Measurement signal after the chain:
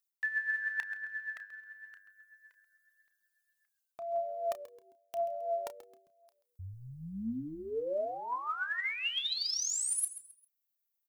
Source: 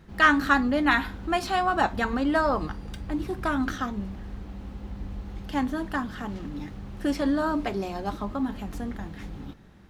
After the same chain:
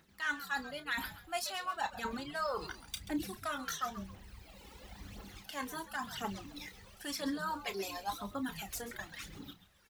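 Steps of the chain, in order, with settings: reverb removal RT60 1.8 s; tilt +4 dB/oct; reverse; compressor 5:1, threshold -35 dBFS; reverse; phaser 0.96 Hz, delay 2.4 ms, feedback 56%; doubler 31 ms -12 dB; on a send: frequency-shifting echo 0.133 s, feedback 31%, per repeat -99 Hz, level -14 dB; on the sum: gain -2.5 dB

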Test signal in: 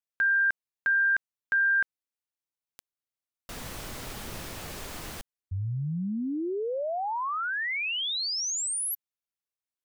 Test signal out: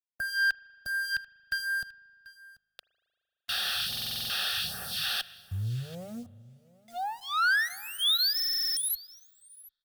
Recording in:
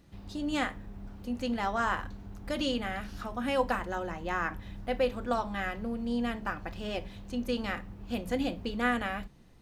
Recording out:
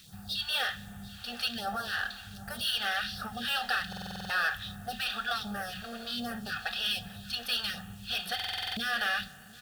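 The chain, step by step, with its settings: FFT band-reject 240–690 Hz; weighting filter D; in parallel at -2 dB: limiter -19.5 dBFS; on the sum: compressor 8:1, threshold -19 dBFS; tube stage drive 31 dB, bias 0.35; fixed phaser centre 1500 Hz, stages 8; notch comb 1000 Hz; requantised 10-bit, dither none; phaser stages 2, 1.3 Hz, lowest notch 110–3400 Hz; on a send: echo 0.738 s -21 dB; on the sum: spring tank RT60 2.3 s, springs 38 ms, chirp 50 ms, DRR 19.5 dB; stuck buffer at 3.88/8.35, samples 2048, times 8; gain +7.5 dB

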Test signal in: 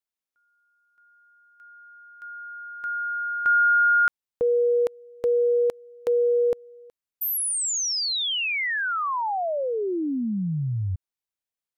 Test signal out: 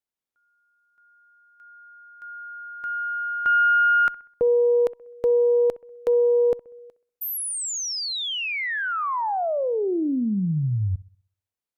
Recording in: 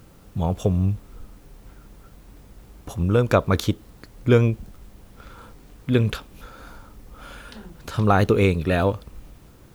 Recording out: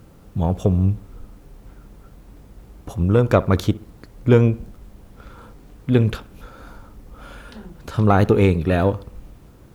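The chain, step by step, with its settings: tilt shelf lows +3 dB, about 1300 Hz; added harmonics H 4 -26 dB, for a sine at -1.5 dBFS; analogue delay 64 ms, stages 1024, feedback 42%, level -19.5 dB

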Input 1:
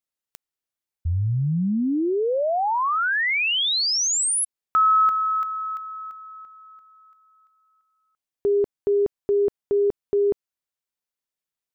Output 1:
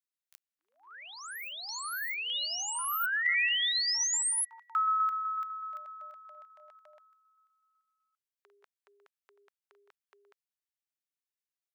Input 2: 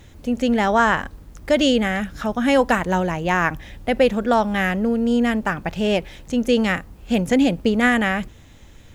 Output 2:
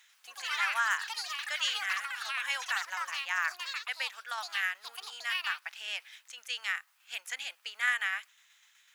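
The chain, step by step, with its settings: tremolo saw down 8 Hz, depth 35%; echoes that change speed 92 ms, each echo +7 st, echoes 3, each echo -6 dB; HPF 1300 Hz 24 dB/oct; gain -6 dB

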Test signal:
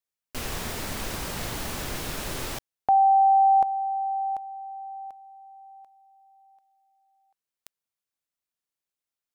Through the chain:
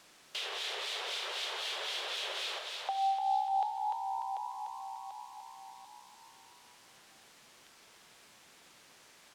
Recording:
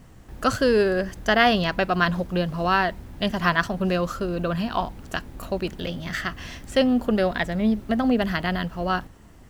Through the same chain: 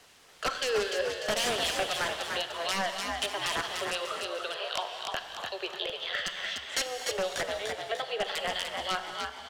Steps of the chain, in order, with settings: steep high-pass 390 Hz 72 dB/oct; gate -48 dBFS, range -23 dB; bell 3400 Hz +14.5 dB 0.94 oct; upward compressor 1.5:1, threshold -41 dBFS; wrapped overs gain 10.5 dB; harmonic tremolo 3.9 Hz, depth 70%, crossover 2100 Hz; requantised 10-bit, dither triangular; air absorption 58 m; frequency-shifting echo 0.296 s, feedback 42%, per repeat +64 Hz, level -5.5 dB; non-linear reverb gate 0.28 s flat, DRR 8.5 dB; three-band squash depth 40%; gain -5.5 dB

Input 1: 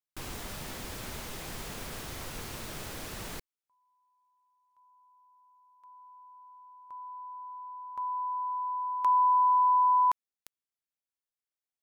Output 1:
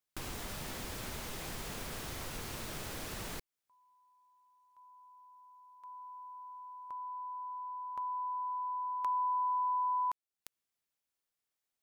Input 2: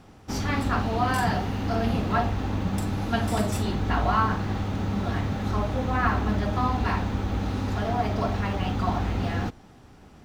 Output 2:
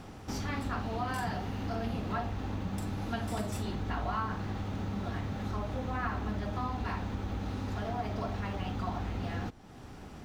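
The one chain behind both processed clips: compressor 2:1, threshold -48 dBFS; gain +4.5 dB

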